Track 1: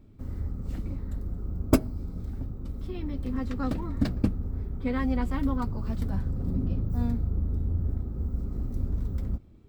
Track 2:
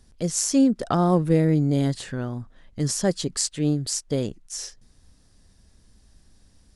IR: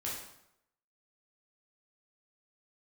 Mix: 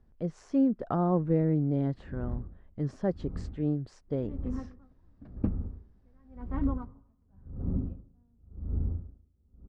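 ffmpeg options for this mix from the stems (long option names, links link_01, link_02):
-filter_complex "[0:a]aeval=exprs='val(0)*pow(10,-39*(0.5-0.5*cos(2*PI*0.92*n/s))/20)':channel_layout=same,adelay=1200,volume=-1.5dB,asplit=2[link_01][link_02];[link_02]volume=-20dB[link_03];[1:a]volume=-6.5dB[link_04];[2:a]atrim=start_sample=2205[link_05];[link_03][link_05]afir=irnorm=-1:irlink=0[link_06];[link_01][link_04][link_06]amix=inputs=3:normalize=0,lowpass=1300"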